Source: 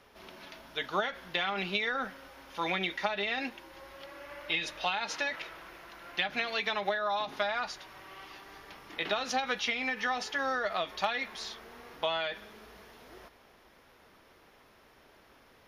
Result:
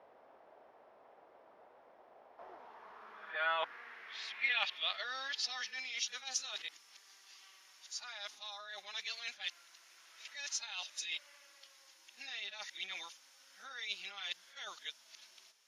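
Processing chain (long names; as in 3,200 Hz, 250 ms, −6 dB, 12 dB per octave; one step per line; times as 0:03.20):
played backwards from end to start
band-pass filter sweep 680 Hz → 6,800 Hz, 0:02.24–0:06.11
level +5.5 dB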